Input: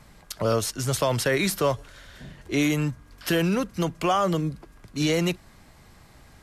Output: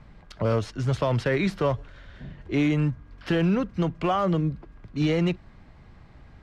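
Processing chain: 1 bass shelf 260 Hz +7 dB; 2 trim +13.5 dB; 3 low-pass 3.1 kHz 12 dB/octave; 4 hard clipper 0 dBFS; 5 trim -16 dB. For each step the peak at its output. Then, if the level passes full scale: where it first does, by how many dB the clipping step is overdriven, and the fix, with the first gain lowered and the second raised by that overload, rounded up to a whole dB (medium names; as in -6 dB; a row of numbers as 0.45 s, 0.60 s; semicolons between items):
-10.0 dBFS, +3.5 dBFS, +3.5 dBFS, 0.0 dBFS, -16.0 dBFS; step 2, 3.5 dB; step 2 +9.5 dB, step 5 -12 dB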